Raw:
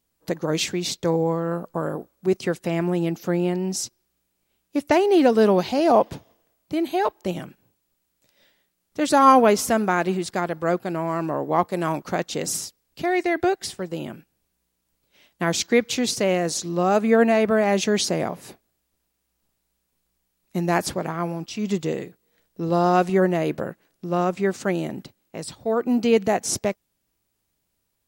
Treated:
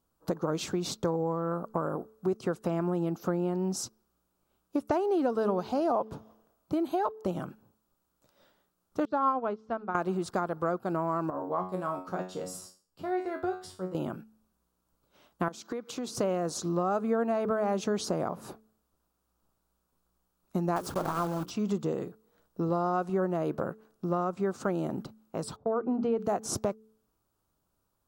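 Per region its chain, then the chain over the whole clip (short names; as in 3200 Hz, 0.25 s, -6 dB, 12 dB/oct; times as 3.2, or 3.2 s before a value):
9.05–9.95 LPF 4300 Hz 24 dB/oct + upward expander 2.5:1, over -28 dBFS
11.3–13.95 notch 6200 Hz, Q 8.7 + resonator 92 Hz, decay 0.36 s, mix 90%
15.48–16.15 HPF 190 Hz + compressor 16:1, threshold -30 dBFS
20.76–21.51 block floating point 3-bit + notches 60/120/180/240/300/360/420/480/540 Hz
25.56–26.19 notches 60/120/180/240/300 Hz + gate -39 dBFS, range -13 dB + tape spacing loss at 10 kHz 27 dB
whole clip: resonant high shelf 1600 Hz -6.5 dB, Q 3; de-hum 218.3 Hz, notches 2; compressor 4:1, threshold -27 dBFS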